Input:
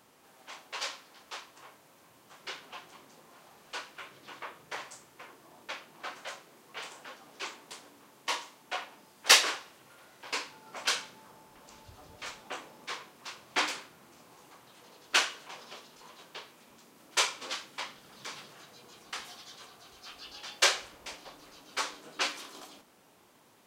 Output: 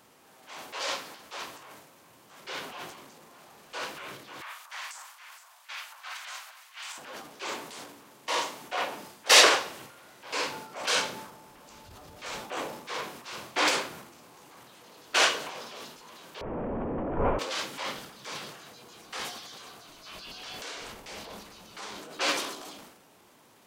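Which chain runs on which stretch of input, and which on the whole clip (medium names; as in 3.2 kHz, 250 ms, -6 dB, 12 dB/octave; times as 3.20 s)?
4.41–6.98 s: Bessel high-pass 1.3 kHz, order 8 + echo whose repeats swap between lows and highs 233 ms, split 1.3 kHz, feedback 53%, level -9 dB
16.41–17.39 s: one-bit delta coder 16 kbps, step -34.5 dBFS + low-pass 1.1 kHz + tilt EQ -3 dB/octave
19.87–21.98 s: compression 20:1, threshold -38 dBFS + frequency shift -89 Hz
whole clip: dynamic bell 530 Hz, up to +7 dB, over -53 dBFS, Q 1.2; transient shaper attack -6 dB, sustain +10 dB; trim +3 dB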